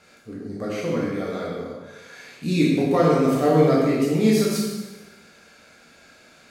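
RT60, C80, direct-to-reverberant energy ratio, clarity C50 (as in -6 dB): 1.2 s, 2.5 dB, -5.0 dB, 0.0 dB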